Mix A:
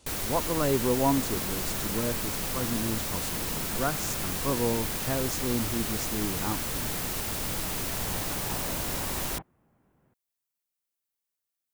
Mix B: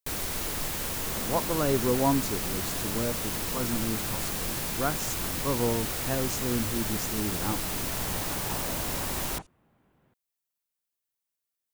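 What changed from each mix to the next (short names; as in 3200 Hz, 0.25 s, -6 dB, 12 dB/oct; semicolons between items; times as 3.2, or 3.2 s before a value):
speech: entry +1.00 s; second sound: remove air absorption 400 m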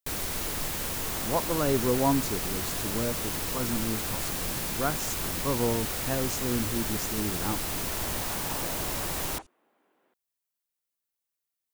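second sound: add HPF 300 Hz 24 dB/oct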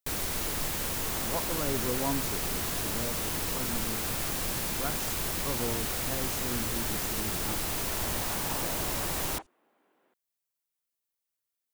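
speech -7.5 dB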